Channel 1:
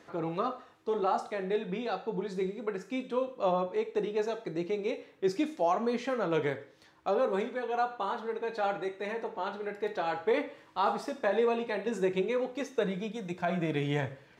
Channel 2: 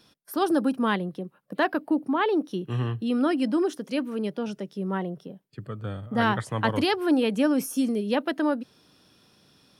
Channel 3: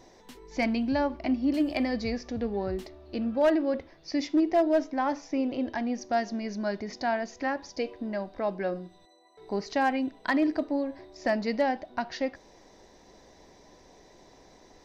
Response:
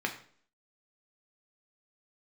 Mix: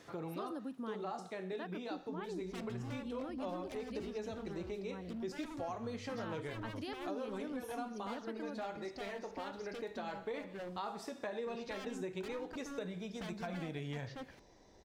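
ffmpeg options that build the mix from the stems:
-filter_complex "[0:a]highshelf=frequency=3700:gain=8.5,volume=-3.5dB[link_01];[1:a]volume=-13.5dB[link_02];[2:a]aeval=exprs='0.0473*(abs(mod(val(0)/0.0473+3,4)-2)-1)':channel_layout=same,adelay=1950,volume=-9.5dB[link_03];[link_01][link_02][link_03]amix=inputs=3:normalize=0,equalizer=frequency=71:width=0.43:gain=7,acompressor=threshold=-42dB:ratio=3"

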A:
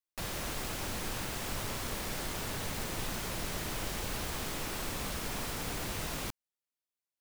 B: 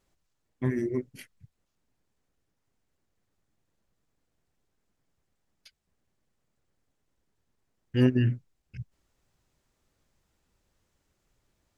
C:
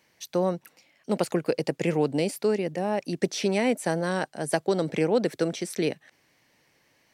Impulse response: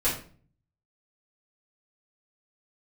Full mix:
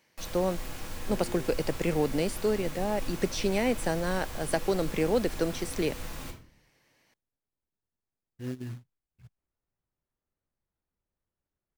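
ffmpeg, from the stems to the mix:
-filter_complex "[0:a]volume=-11dB,asplit=2[link_01][link_02];[link_02]volume=-6dB[link_03];[1:a]lowpass=1900,acrusher=bits=4:mode=log:mix=0:aa=0.000001,adelay=450,volume=-14.5dB[link_04];[2:a]volume=-3dB[link_05];[3:a]atrim=start_sample=2205[link_06];[link_03][link_06]afir=irnorm=-1:irlink=0[link_07];[link_01][link_04][link_05][link_07]amix=inputs=4:normalize=0"

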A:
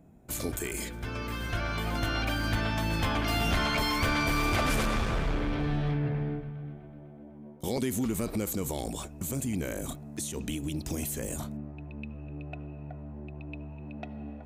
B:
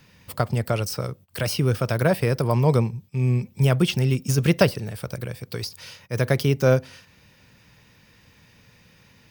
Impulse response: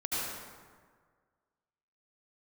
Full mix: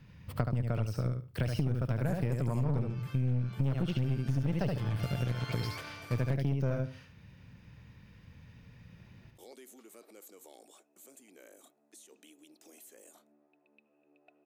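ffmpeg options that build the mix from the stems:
-filter_complex "[0:a]highpass=frequency=330:width=0.5412,highpass=frequency=330:width=1.3066,bandreject=frequency=980:width=12,adelay=1750,volume=-9dB,asplit=3[link_01][link_02][link_03];[link_01]atrim=end=6.34,asetpts=PTS-STARTPTS,afade=type=out:start_time=6.336:duration=0.004:curve=hsin[link_04];[link_02]atrim=start=6.34:end=8.97,asetpts=PTS-STARTPTS,volume=0[link_05];[link_03]atrim=start=8.97,asetpts=PTS-STARTPTS,afade=type=in:duration=0.004:curve=hsin[link_06];[link_04][link_05][link_06]concat=n=3:v=0:a=1[link_07];[1:a]bass=frequency=250:gain=11,treble=frequency=4000:gain=-9,volume=-5dB,asplit=3[link_08][link_09][link_10];[link_09]volume=-4.5dB[link_11];[link_10]apad=whole_len=714803[link_12];[link_07][link_12]sidechaingate=range=-7dB:threshold=-45dB:ratio=16:detection=peak[link_13];[link_11]aecho=0:1:73|146|219:1|0.17|0.0289[link_14];[link_13][link_08][link_14]amix=inputs=3:normalize=0,aeval=exprs='(tanh(5.01*val(0)+0.6)-tanh(0.6))/5.01':channel_layout=same,acompressor=threshold=-28dB:ratio=5"

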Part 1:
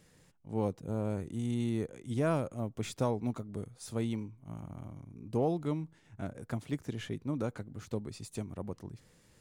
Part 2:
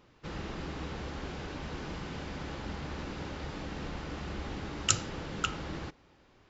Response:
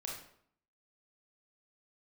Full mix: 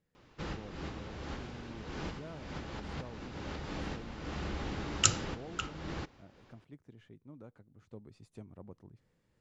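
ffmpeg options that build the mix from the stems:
-filter_complex "[0:a]aemphasis=mode=reproduction:type=75fm,volume=-11dB,afade=type=in:start_time=7.67:duration=0.58:silence=0.446684,asplit=2[link_01][link_02];[1:a]adelay=150,volume=1dB[link_03];[link_02]apad=whole_len=293013[link_04];[link_03][link_04]sidechaincompress=threshold=-53dB:ratio=8:attack=8.5:release=284[link_05];[link_01][link_05]amix=inputs=2:normalize=0"

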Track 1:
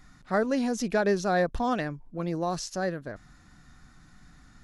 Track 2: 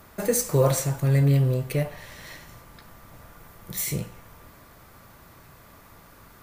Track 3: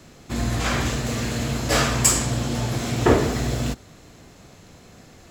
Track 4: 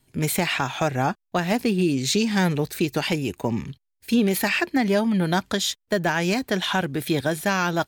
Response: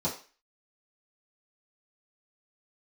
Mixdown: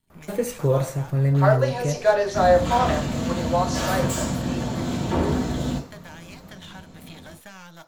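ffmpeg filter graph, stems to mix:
-filter_complex "[0:a]highpass=frequency=510:width=0.5412,highpass=frequency=510:width=1.3066,adelay=1100,volume=1.5dB,asplit=2[link_01][link_02];[link_02]volume=-3.5dB[link_03];[1:a]highshelf=frequency=2100:gain=-11.5,adelay=100,volume=0dB[link_04];[2:a]asoftclip=type=hard:threshold=-20dB,adelay=2050,volume=-7.5dB,asplit=2[link_05][link_06];[link_06]volume=-3.5dB[link_07];[3:a]aeval=exprs='if(lt(val(0),0),0.251*val(0),val(0))':channel_layout=same,acrossover=split=720|3900[link_08][link_09][link_10];[link_08]acompressor=threshold=-44dB:ratio=4[link_11];[link_09]acompressor=threshold=-38dB:ratio=4[link_12];[link_10]acompressor=threshold=-41dB:ratio=4[link_13];[link_11][link_12][link_13]amix=inputs=3:normalize=0,volume=-8dB,asplit=2[link_14][link_15];[link_15]volume=-14.5dB[link_16];[4:a]atrim=start_sample=2205[link_17];[link_03][link_07][link_16]amix=inputs=3:normalize=0[link_18];[link_18][link_17]afir=irnorm=-1:irlink=0[link_19];[link_01][link_04][link_05][link_14][link_19]amix=inputs=5:normalize=0"

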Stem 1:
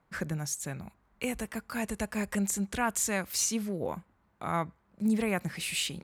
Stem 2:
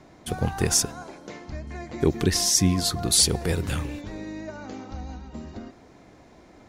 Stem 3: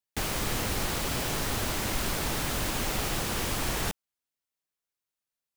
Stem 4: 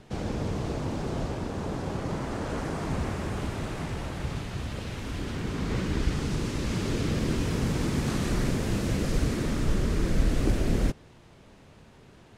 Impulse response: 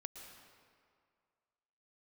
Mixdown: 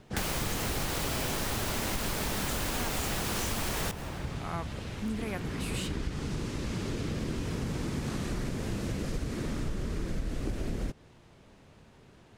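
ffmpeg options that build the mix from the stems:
-filter_complex "[0:a]volume=-5.5dB[link_01];[2:a]volume=2.5dB,asplit=2[link_02][link_03];[link_03]volume=-4.5dB[link_04];[3:a]volume=-3.5dB[link_05];[4:a]atrim=start_sample=2205[link_06];[link_04][link_06]afir=irnorm=-1:irlink=0[link_07];[link_01][link_02][link_05][link_07]amix=inputs=4:normalize=0,acompressor=threshold=-29dB:ratio=5"

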